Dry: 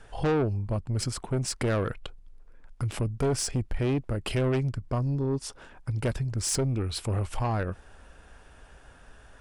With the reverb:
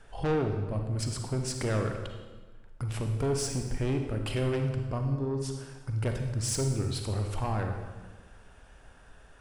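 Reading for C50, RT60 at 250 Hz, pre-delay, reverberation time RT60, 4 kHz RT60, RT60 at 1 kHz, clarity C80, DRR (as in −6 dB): 5.0 dB, 1.6 s, 35 ms, 1.3 s, 1.1 s, 1.3 s, 7.0 dB, 4.0 dB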